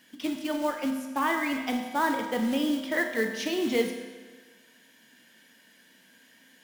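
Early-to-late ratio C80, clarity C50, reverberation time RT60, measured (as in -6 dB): 7.0 dB, 5.5 dB, 1.4 s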